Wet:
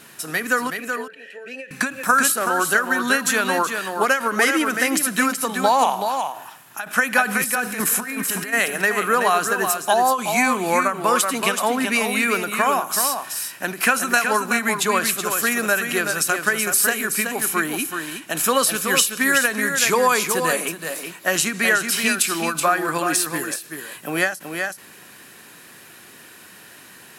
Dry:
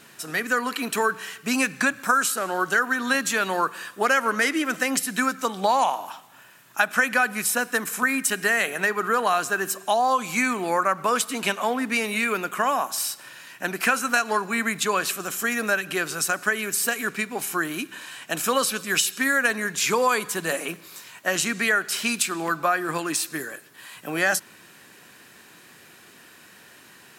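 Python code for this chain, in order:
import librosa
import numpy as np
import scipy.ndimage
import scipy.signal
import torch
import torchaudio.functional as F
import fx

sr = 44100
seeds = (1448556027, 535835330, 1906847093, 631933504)

y = fx.vowel_filter(x, sr, vowel='e', at=(0.7, 1.71))
y = fx.over_compress(y, sr, threshold_db=-31.0, ratio=-1.0, at=(7.26, 8.52), fade=0.02)
y = fx.peak_eq(y, sr, hz=11000.0, db=7.5, octaves=0.34)
y = y + 10.0 ** (-6.5 / 20.0) * np.pad(y, (int(376 * sr / 1000.0), 0))[:len(y)]
y = fx.end_taper(y, sr, db_per_s=160.0)
y = F.gain(torch.from_numpy(y), 3.5).numpy()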